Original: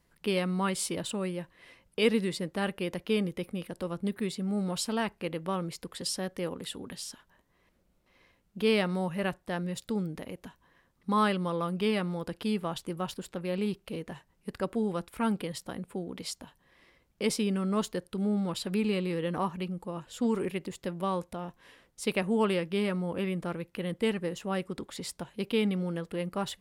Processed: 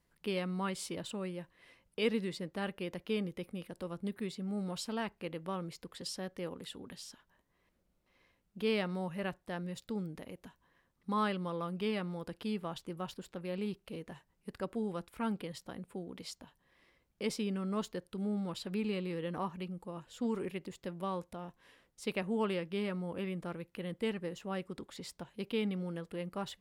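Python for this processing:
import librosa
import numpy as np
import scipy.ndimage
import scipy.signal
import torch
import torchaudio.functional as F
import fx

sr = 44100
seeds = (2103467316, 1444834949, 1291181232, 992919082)

y = fx.dynamic_eq(x, sr, hz=9900.0, q=1.3, threshold_db=-57.0, ratio=4.0, max_db=-6)
y = y * 10.0 ** (-6.5 / 20.0)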